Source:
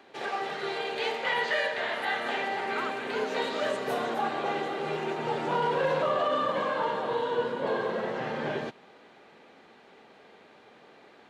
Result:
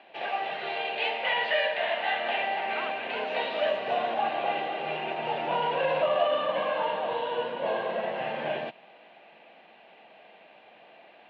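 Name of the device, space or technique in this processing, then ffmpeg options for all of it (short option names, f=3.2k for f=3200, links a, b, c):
kitchen radio: -af "highpass=190,equalizer=f=260:t=q:w=4:g=-7,equalizer=f=410:t=q:w=4:g=-9,equalizer=f=670:t=q:w=4:g=9,equalizer=f=1.3k:t=q:w=4:g=-7,equalizer=f=2.7k:t=q:w=4:g=9,lowpass=f=3.6k:w=0.5412,lowpass=f=3.6k:w=1.3066"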